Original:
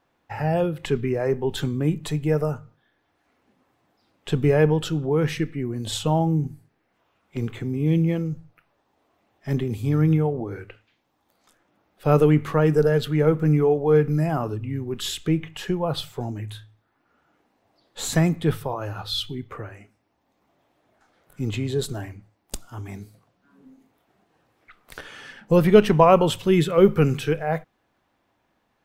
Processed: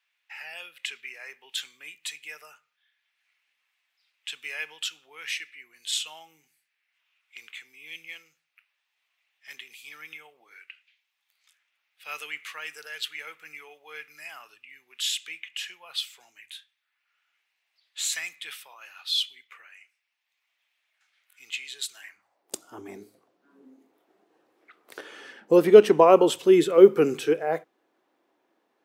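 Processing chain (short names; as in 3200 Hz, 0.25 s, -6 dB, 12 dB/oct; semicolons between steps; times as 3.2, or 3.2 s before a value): high-pass sweep 2400 Hz -> 350 Hz, 22.01–22.52; dynamic EQ 7600 Hz, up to +5 dB, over -46 dBFS, Q 0.74; gain -4 dB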